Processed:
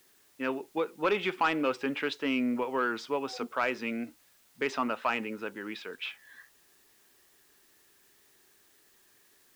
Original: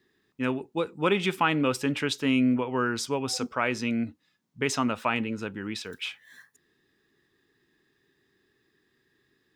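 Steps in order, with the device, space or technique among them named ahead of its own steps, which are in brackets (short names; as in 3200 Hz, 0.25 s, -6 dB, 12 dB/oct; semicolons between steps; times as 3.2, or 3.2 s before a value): tape answering machine (BPF 340–2800 Hz; soft clip -17 dBFS, distortion -18 dB; wow and flutter; white noise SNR 30 dB)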